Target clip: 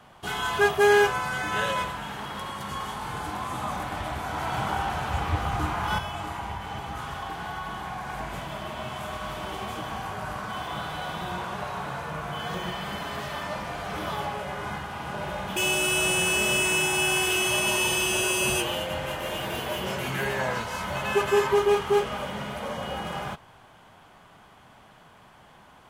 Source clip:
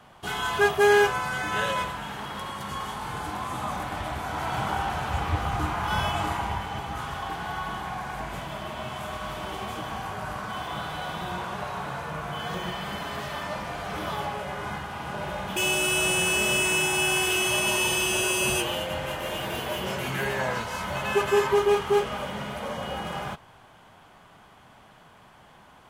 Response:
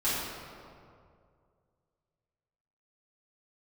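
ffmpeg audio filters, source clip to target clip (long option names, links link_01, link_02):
-filter_complex "[0:a]asettb=1/sr,asplit=3[link_01][link_02][link_03];[link_01]atrim=end=5.984[link_04];[link_02]atrim=start=5.98:end=8.08,asetpts=PTS-STARTPTS,afade=type=in:duration=0.004:curve=qsin,afade=type=out:start_time=2.096:duration=0.004:curve=qsin,acompressor=threshold=-30dB:ratio=6[link_05];[link_03]atrim=start=8.076[link_06];[link_04][link_05]acrossfade=duration=0.004:curve1=hsin:curve2=qsin[link_07];[link_07][link_06]acrossfade=duration=0.004:curve1=qsin:curve2=hsin"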